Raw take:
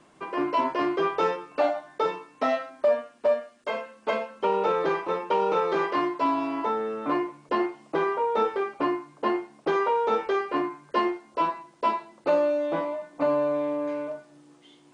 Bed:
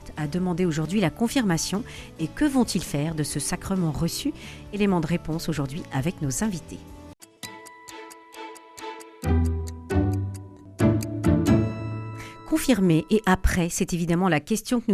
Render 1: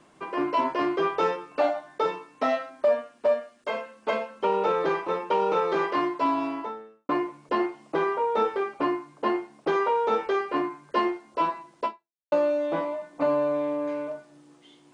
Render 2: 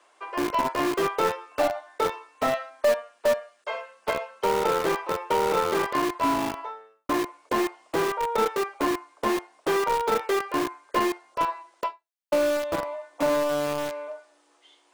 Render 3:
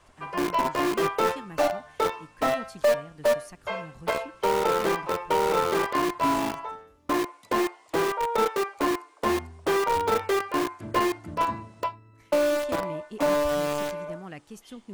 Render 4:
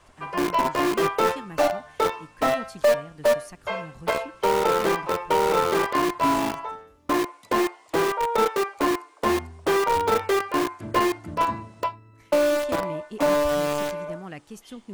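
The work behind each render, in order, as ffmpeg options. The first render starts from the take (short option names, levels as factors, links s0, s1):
-filter_complex "[0:a]asplit=3[s0][s1][s2];[s0]atrim=end=7.09,asetpts=PTS-STARTPTS,afade=t=out:st=6.47:d=0.62:c=qua[s3];[s1]atrim=start=7.09:end=12.32,asetpts=PTS-STARTPTS,afade=t=in:d=0.004:c=hsin,afade=t=out:st=4.75:d=0.48:c=exp[s4];[s2]atrim=start=12.32,asetpts=PTS-STARTPTS,afade=t=in:d=0.004:c=hsin[s5];[s3][s4][s5]concat=n=3:v=0:a=1"
-filter_complex "[0:a]acrossover=split=460|3000[s0][s1][s2];[s0]acrusher=bits=4:mix=0:aa=0.000001[s3];[s3][s1][s2]amix=inputs=3:normalize=0,aeval=exprs='0.266*(cos(1*acos(clip(val(0)/0.266,-1,1)))-cos(1*PI/2))+0.0133*(cos(2*acos(clip(val(0)/0.266,-1,1)))-cos(2*PI/2))':c=same"
-filter_complex "[1:a]volume=0.106[s0];[0:a][s0]amix=inputs=2:normalize=0"
-af "volume=1.33"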